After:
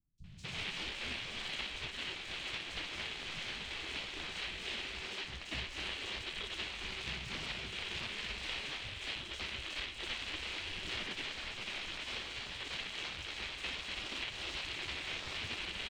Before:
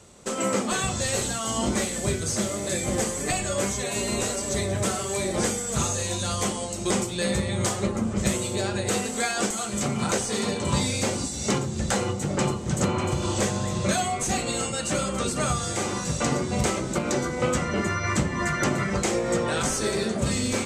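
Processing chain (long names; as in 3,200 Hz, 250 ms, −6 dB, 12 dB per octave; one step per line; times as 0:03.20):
samples sorted by size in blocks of 16 samples
gate on every frequency bin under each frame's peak −20 dB weak
Chebyshev band-stop filter 200–2,400 Hz, order 2
in parallel at +2 dB: brickwall limiter −23 dBFS, peak gain reduction 9.5 dB
on the sum: speed change +30%
bass and treble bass −2 dB, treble −12 dB
sample-rate reduction 12,000 Hz, jitter 20%
high-frequency loss of the air 140 metres
three-band delay without the direct sound lows, highs, mids 180/240 ms, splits 180/5,600 Hz
highs frequency-modulated by the lows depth 0.22 ms
level +3 dB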